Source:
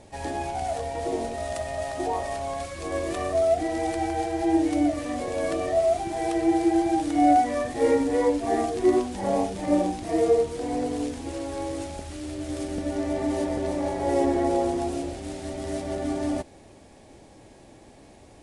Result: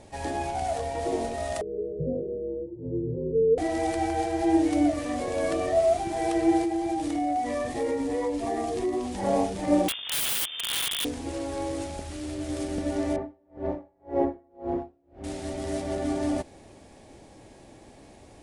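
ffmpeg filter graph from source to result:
-filter_complex "[0:a]asettb=1/sr,asplit=3[a][b][c];[a]atrim=end=1.614[d];[b]atrim=start=1.61:end=3.58,asetpts=PTS-STARTPTS,afade=t=in:d=0.004:c=qsin,afade=t=out:st=1.966:d=0.004:c=qsin,asuperpass=centerf=460:order=12:qfactor=0.96,afreqshift=-210[e];[c]atrim=start=3.576[f];[d][e]acrossfade=d=0.004:c1=hsin:c2=qsin[g];[g][f]acrossfade=d=0.004:c1=qsin:c2=hsin,asettb=1/sr,asplit=3[h][i][j];[h]atrim=end=6.634[k];[i]atrim=start=6.63:end=9.15,asetpts=PTS-STARTPTS,afade=t=in:d=0.004:c=qsin,afade=t=out:st=2.516:d=0.004:c=qsin,bandreject=f=1.5k:w=7.9,acompressor=threshold=-25dB:ratio=4:attack=3.2:release=140:knee=1:detection=peak[l];[j]atrim=start=9.146[m];[k][l]acrossfade=d=0.004:c1=hsin:c2=qsin[n];[n][m]acrossfade=d=0.004:c1=qsin:c2=hsin,asettb=1/sr,asplit=3[o][p][q];[o]atrim=end=9.884[r];[p]atrim=start=9.88:end=11.05,asetpts=PTS-STARTPTS,afade=t=in:d=0.004:c=qsin,afade=t=out:st=1.166:d=0.004:c=qsin,acrusher=bits=5:dc=4:mix=0:aa=0.000001,lowpass=f=3.1k:t=q:w=0.5098,lowpass=f=3.1k:t=q:w=0.6013,lowpass=f=3.1k:t=q:w=0.9,lowpass=f=3.1k:t=q:w=2.563,afreqshift=-3600,aeval=exprs='(mod(13.3*val(0)+1,2)-1)/13.3':c=same[s];[q]atrim=start=11.046[t];[r][s]acrossfade=d=0.004:c1=hsin:c2=qsin[u];[u][t]acrossfade=d=0.004:c1=qsin:c2=hsin,asettb=1/sr,asplit=3[v][w][x];[v]atrim=end=13.164[y];[w]atrim=start=13.16:end=15.24,asetpts=PTS-STARTPTS,afade=t=in:d=0.004:c=qsin,afade=t=out:st=2.076:d=0.004:c=qsin,lowpass=1.4k,aeval=exprs='val(0)*pow(10,-39*(0.5-0.5*cos(2*PI*1.9*n/s))/20)':c=same[z];[x]atrim=start=15.236[aa];[y][z]acrossfade=d=0.004:c1=hsin:c2=qsin[ab];[ab][aa]acrossfade=d=0.004:c1=qsin:c2=hsin"

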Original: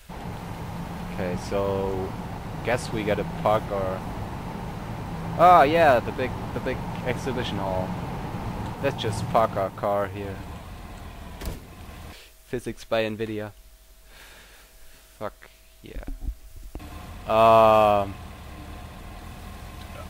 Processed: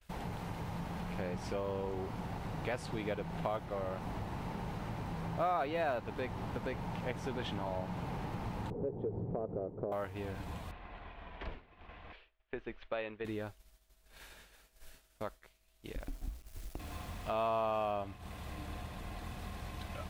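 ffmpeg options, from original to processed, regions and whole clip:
-filter_complex "[0:a]asettb=1/sr,asplit=3[a][b][c];[a]atrim=end=8.704[d];[b]atrim=start=8.7:end=9.92,asetpts=PTS-STARTPTS,afade=t=in:d=0.004:c=qsin,afade=t=out:st=1.216:d=0.004:c=qsin,lowpass=f=430:t=q:w=3.9,acompressor=threshold=-22dB:ratio=2.5:attack=3.2:release=140:knee=1:detection=peak[e];[c]atrim=start=9.916[f];[d][e]acrossfade=d=0.004:c1=hsin:c2=qsin[g];[g][f]acrossfade=d=0.004:c1=qsin:c2=hsin,asettb=1/sr,asplit=3[h][i][j];[h]atrim=end=10.714[k];[i]atrim=start=10.71:end=13.25,asetpts=PTS-STARTPTS,afade=t=in:d=0.004:c=qsin,afade=t=out:st=2.536:d=0.004:c=qsin,lowpass=f=3k:w=0.5412,lowpass=f=3k:w=1.3066,equalizer=f=130:w=0.48:g=-11.5[l];[j]atrim=start=13.246[m];[k][l]acrossfade=d=0.004:c1=hsin:c2=qsin[n];[n][m]acrossfade=d=0.004:c1=qsin:c2=hsin,asettb=1/sr,asplit=3[o][p][q];[o]atrim=end=16.004[r];[p]atrim=start=16:end=17.5,asetpts=PTS-STARTPTS,afade=t=in:d=0.004:c=qsin,afade=t=out:st=1.496:d=0.004:c=qsin,bandreject=f=60:t=h:w=6,bandreject=f=120:t=h:w=6,bandreject=f=180:t=h:w=6,bandreject=f=240:t=h:w=6,bandreject=f=300:t=h:w=6,bandreject=f=360:t=h:w=6,bandreject=f=420:t=h:w=6,bandreject=f=480:t=h:w=6,bandreject=f=540:t=h:w=6,acrusher=bits=7:mix=0:aa=0.5[s];[q]atrim=start=17.496[t];[r][s]acrossfade=d=0.004:c1=hsin:c2=qsin[u];[u][t]acrossfade=d=0.004:c1=qsin:c2=hsin,acompressor=threshold=-38dB:ratio=2.5,agate=range=-33dB:threshold=-40dB:ratio=3:detection=peak,adynamicequalizer=threshold=0.00141:dfrequency=6000:dqfactor=0.7:tfrequency=6000:tqfactor=0.7:attack=5:release=100:ratio=0.375:range=2.5:mode=cutabove:tftype=highshelf,volume=-1.5dB"

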